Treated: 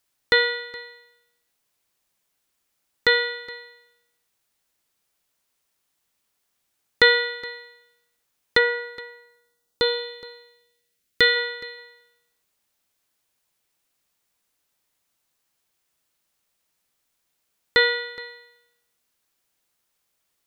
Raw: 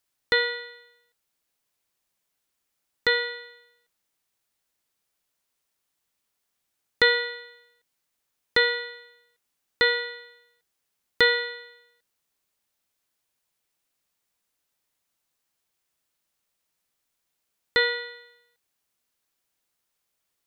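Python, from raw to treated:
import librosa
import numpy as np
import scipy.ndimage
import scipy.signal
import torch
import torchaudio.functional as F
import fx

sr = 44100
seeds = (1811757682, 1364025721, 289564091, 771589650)

y = fx.peak_eq(x, sr, hz=fx.line((8.57, 4000.0), (11.35, 750.0)), db=-14.0, octaves=0.89, at=(8.57, 11.35), fade=0.02)
y = y + 10.0 ** (-20.0 / 20.0) * np.pad(y, (int(419 * sr / 1000.0), 0))[:len(y)]
y = y * 10.0 ** (4.0 / 20.0)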